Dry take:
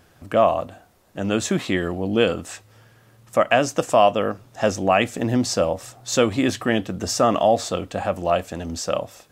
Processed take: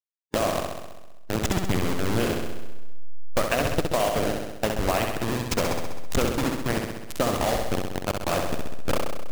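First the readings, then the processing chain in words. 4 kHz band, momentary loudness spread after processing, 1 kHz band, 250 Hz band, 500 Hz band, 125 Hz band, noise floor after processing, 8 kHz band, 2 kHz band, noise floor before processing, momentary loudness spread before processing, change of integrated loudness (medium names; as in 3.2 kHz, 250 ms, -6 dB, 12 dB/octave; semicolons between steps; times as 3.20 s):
-3.5 dB, 8 LU, -6.5 dB, -5.0 dB, -6.5 dB, -0.5 dB, -37 dBFS, -4.0 dB, -3.5 dB, -55 dBFS, 10 LU, -5.5 dB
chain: send-on-delta sampling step -14 dBFS; compression, threshold -18 dBFS, peak gain reduction 7.5 dB; flutter echo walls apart 11.2 m, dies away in 1.1 s; harmonic-percussive split harmonic -7 dB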